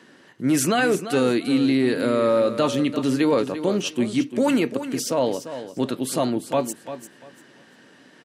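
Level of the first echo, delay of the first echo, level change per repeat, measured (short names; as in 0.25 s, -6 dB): -11.5 dB, 0.345 s, -13.0 dB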